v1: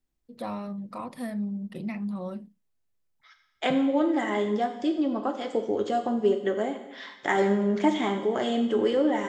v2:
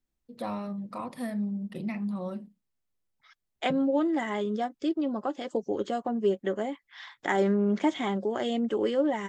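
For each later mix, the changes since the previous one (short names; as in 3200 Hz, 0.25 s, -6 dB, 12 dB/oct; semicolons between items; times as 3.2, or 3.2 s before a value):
reverb: off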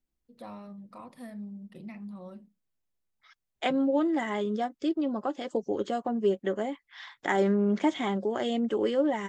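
first voice -9.5 dB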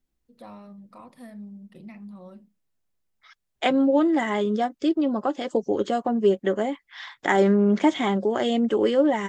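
second voice +6.0 dB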